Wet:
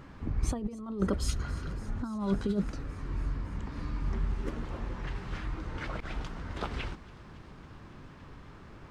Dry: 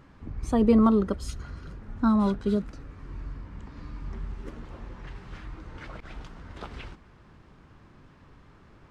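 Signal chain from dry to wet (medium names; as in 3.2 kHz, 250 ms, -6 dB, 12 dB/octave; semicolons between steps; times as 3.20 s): compressor with a negative ratio -27 dBFS, ratio -0.5; feedback echo behind a high-pass 279 ms, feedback 81%, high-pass 3.6 kHz, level -18.5 dB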